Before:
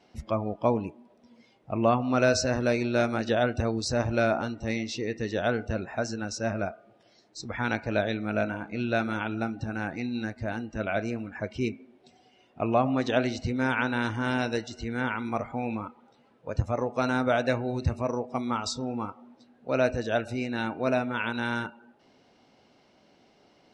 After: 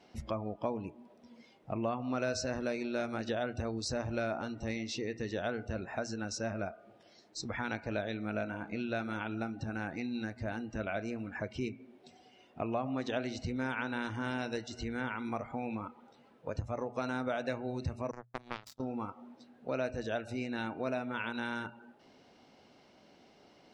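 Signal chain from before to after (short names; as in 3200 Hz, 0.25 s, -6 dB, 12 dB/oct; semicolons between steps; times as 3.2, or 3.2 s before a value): 18.11–18.8 power-law curve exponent 3; compressor 2.5:1, threshold -36 dBFS, peak gain reduction 12.5 dB; notches 60/120 Hz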